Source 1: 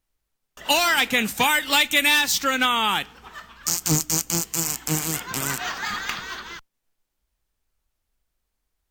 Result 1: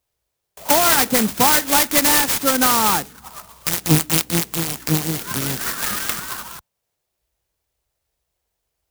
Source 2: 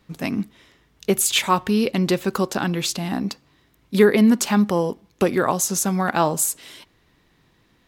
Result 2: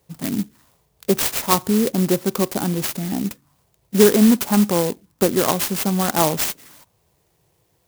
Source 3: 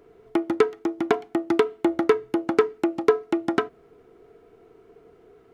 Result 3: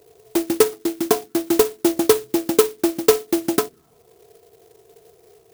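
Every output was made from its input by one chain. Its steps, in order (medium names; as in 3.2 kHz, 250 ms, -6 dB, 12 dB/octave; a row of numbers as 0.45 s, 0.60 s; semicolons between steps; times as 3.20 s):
high-pass 78 Hz 12 dB/octave; touch-sensitive phaser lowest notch 240 Hz, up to 4.2 kHz, full sweep at -17 dBFS; sampling jitter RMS 0.12 ms; peak normalisation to -1.5 dBFS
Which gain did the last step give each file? +7.5 dB, +2.0 dB, +4.5 dB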